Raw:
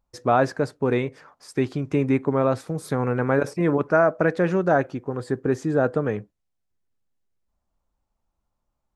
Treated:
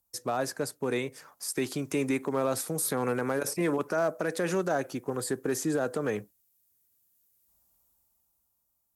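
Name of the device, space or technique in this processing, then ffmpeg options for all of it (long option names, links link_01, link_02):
FM broadcast chain: -filter_complex "[0:a]highpass=57,dynaudnorm=framelen=200:gausssize=13:maxgain=12dB,acrossover=split=200|840|4300[link_01][link_02][link_03][link_04];[link_01]acompressor=threshold=-35dB:ratio=4[link_05];[link_02]acompressor=threshold=-14dB:ratio=4[link_06];[link_03]acompressor=threshold=-23dB:ratio=4[link_07];[link_04]acompressor=threshold=-43dB:ratio=4[link_08];[link_05][link_06][link_07][link_08]amix=inputs=4:normalize=0,aemphasis=mode=production:type=50fm,alimiter=limit=-11.5dB:level=0:latency=1:release=72,asoftclip=type=hard:threshold=-12.5dB,lowpass=frequency=15000:width=0.5412,lowpass=frequency=15000:width=1.3066,aemphasis=mode=production:type=50fm,volume=-7.5dB"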